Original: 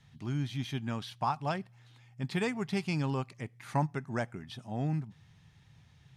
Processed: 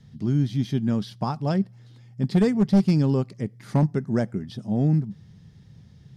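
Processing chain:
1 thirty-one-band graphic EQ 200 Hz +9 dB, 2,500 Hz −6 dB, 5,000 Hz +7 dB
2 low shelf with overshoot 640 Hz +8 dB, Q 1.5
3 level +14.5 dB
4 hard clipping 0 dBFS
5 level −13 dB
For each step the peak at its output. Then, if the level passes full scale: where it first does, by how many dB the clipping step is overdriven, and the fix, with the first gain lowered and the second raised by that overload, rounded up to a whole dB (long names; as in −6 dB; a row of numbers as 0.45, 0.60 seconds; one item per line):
−15.0, −7.0, +7.5, 0.0, −13.0 dBFS
step 3, 7.5 dB
step 3 +6.5 dB, step 5 −5 dB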